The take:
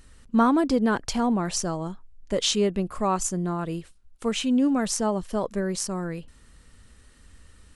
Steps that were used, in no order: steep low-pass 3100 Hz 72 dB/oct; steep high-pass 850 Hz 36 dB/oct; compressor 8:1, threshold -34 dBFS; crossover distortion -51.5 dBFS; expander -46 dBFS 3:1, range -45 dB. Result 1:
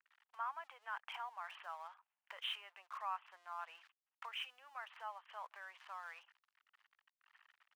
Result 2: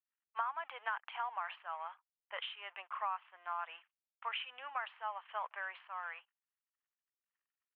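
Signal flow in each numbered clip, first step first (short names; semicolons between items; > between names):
expander > steep low-pass > crossover distortion > compressor > steep high-pass; crossover distortion > steep high-pass > expander > compressor > steep low-pass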